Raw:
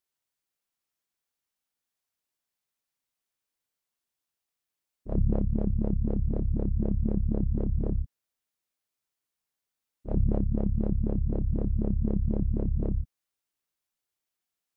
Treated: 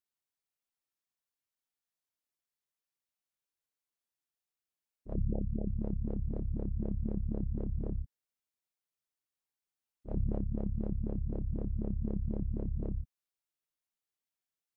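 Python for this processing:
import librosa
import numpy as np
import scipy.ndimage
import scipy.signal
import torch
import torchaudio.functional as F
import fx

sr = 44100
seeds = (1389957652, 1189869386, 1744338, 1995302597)

y = fx.spec_gate(x, sr, threshold_db=-30, keep='strong', at=(5.14, 5.74), fade=0.02)
y = y * librosa.db_to_amplitude(-7.5)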